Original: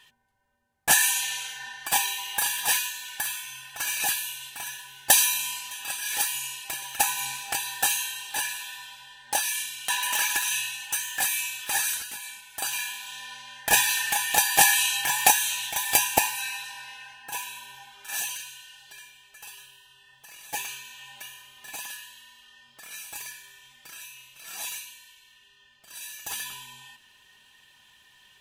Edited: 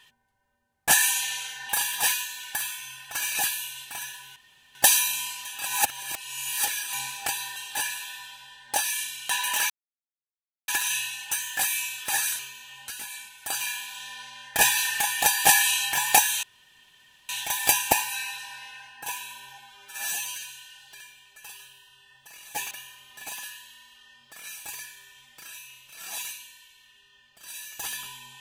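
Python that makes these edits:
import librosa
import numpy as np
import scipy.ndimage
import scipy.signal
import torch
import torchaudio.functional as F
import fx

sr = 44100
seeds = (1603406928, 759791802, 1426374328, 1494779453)

y = fx.edit(x, sr, fx.cut(start_s=1.69, length_s=0.65),
    fx.insert_room_tone(at_s=5.01, length_s=0.39),
    fx.reverse_span(start_s=5.92, length_s=1.27),
    fx.cut(start_s=7.82, length_s=0.33),
    fx.insert_silence(at_s=10.29, length_s=0.98),
    fx.insert_room_tone(at_s=15.55, length_s=0.86),
    fx.stretch_span(start_s=17.84, length_s=0.56, factor=1.5),
    fx.move(start_s=20.69, length_s=0.49, to_s=12.0), tone=tone)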